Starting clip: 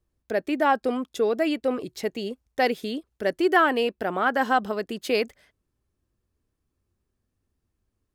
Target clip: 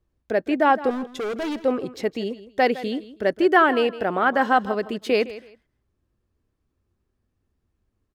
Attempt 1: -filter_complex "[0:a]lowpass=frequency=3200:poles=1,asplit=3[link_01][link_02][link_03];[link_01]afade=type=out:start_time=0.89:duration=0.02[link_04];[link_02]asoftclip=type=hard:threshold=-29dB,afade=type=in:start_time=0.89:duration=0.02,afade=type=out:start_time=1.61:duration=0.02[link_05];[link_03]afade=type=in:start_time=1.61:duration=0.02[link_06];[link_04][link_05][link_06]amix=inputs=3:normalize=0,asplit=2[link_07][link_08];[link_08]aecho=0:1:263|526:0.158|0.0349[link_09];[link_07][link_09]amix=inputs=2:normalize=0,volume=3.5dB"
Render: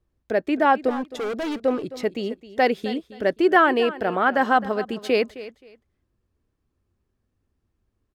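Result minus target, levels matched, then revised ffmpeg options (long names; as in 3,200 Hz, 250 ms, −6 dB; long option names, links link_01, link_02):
echo 102 ms late
-filter_complex "[0:a]lowpass=frequency=3200:poles=1,asplit=3[link_01][link_02][link_03];[link_01]afade=type=out:start_time=0.89:duration=0.02[link_04];[link_02]asoftclip=type=hard:threshold=-29dB,afade=type=in:start_time=0.89:duration=0.02,afade=type=out:start_time=1.61:duration=0.02[link_05];[link_03]afade=type=in:start_time=1.61:duration=0.02[link_06];[link_04][link_05][link_06]amix=inputs=3:normalize=0,asplit=2[link_07][link_08];[link_08]aecho=0:1:161|322:0.158|0.0349[link_09];[link_07][link_09]amix=inputs=2:normalize=0,volume=3.5dB"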